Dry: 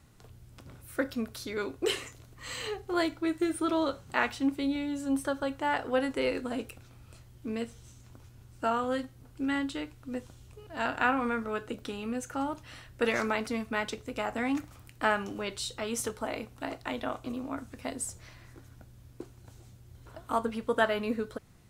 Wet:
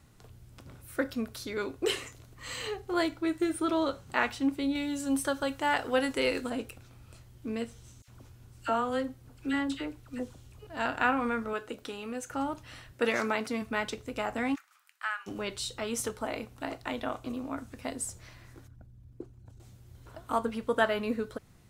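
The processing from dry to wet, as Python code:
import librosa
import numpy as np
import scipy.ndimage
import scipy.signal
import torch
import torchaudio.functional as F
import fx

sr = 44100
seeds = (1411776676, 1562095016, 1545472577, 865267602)

y = fx.high_shelf(x, sr, hz=2200.0, db=7.5, at=(4.75, 6.5))
y = fx.dispersion(y, sr, late='lows', ms=59.0, hz=1400.0, at=(8.02, 10.65))
y = fx.bass_treble(y, sr, bass_db=-9, treble_db=0, at=(11.53, 12.3))
y = fx.highpass(y, sr, hz=130.0, slope=12, at=(12.92, 13.62))
y = fx.ladder_highpass(y, sr, hz=1100.0, resonance_pct=40, at=(14.54, 15.26), fade=0.02)
y = fx.envelope_sharpen(y, sr, power=1.5, at=(18.67, 19.6))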